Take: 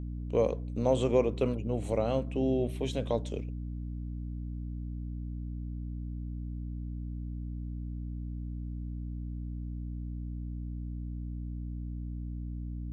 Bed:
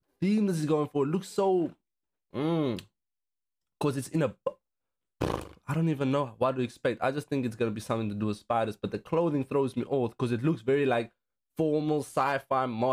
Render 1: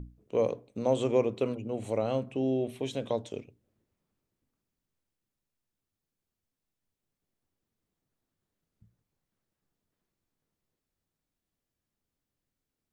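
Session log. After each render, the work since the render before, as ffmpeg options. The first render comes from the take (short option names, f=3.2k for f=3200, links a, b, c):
-af "bandreject=f=60:t=h:w=6,bandreject=f=120:t=h:w=6,bandreject=f=180:t=h:w=6,bandreject=f=240:t=h:w=6,bandreject=f=300:t=h:w=6"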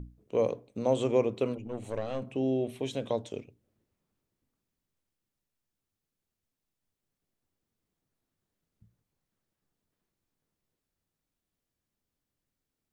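-filter_complex "[0:a]asettb=1/sr,asplit=3[a][b][c];[a]atrim=end=1.584[d];[b]atrim=start=1.58:end=2.22,asetpts=PTS-STARTPTS,afade=t=in:d=0.004:c=qsin,afade=t=out:st=0.636:d=0.004:c=qsin,aeval=exprs='(tanh(20*val(0)+0.65)-tanh(0.65))/20':c=same[e];[c]atrim=start=2.216[f];[d][e]acrossfade=d=0.004:c1=hsin:c2=qsin[g];[g][f]acrossfade=d=0.004:c1=qsin:c2=hsin"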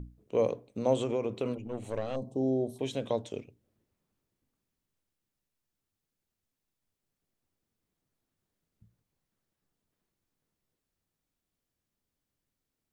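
-filter_complex "[0:a]asettb=1/sr,asplit=3[a][b][c];[a]atrim=end=0.954[d];[b]atrim=start=0.95:end=1.45,asetpts=PTS-STARTPTS,afade=t=in:d=0.004:c=qsin,afade=t=out:st=0.496:d=0.004:c=qsin,acompressor=threshold=-26dB:ratio=6:attack=3.2:release=140:knee=1:detection=peak[e];[c]atrim=start=1.446[f];[d][e]acrossfade=d=0.004:c1=hsin:c2=qsin[g];[g][f]acrossfade=d=0.004:c1=qsin:c2=hsin,asettb=1/sr,asplit=3[h][i][j];[h]atrim=end=2.164[k];[i]atrim=start=2.16:end=2.79,asetpts=PTS-STARTPTS,afade=t=in:d=0.004:c=qsin,afade=t=out:st=0.626:d=0.004:c=qsin,asuperstop=centerf=2000:order=8:qfactor=0.62[l];[j]atrim=start=2.786[m];[k][l]acrossfade=d=0.004:c1=hsin:c2=qsin[n];[n][m]acrossfade=d=0.004:c1=qsin:c2=hsin"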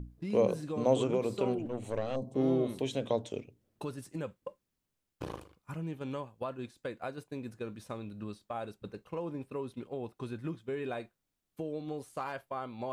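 -filter_complex "[1:a]volume=-11dB[a];[0:a][a]amix=inputs=2:normalize=0"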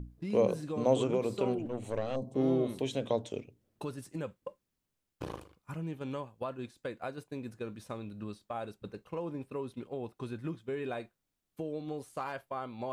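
-af anull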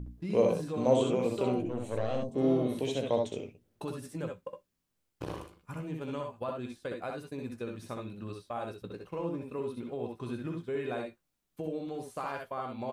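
-filter_complex "[0:a]asplit=2[a][b];[b]adelay=17,volume=-12dB[c];[a][c]amix=inputs=2:normalize=0,aecho=1:1:64|76:0.596|0.355"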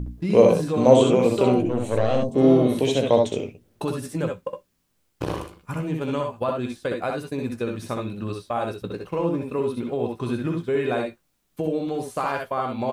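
-af "volume=11dB"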